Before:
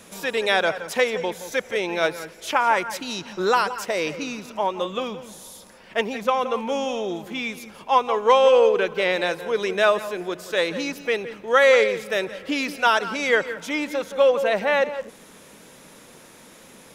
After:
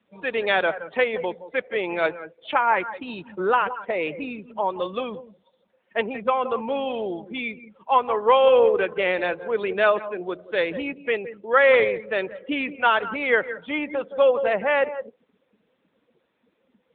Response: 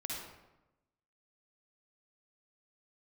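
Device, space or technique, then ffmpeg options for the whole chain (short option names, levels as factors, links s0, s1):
mobile call with aggressive noise cancelling: -af "highpass=f=150:p=1,afftdn=nr=21:nf=-35" -ar 8000 -c:a libopencore_amrnb -b:a 10200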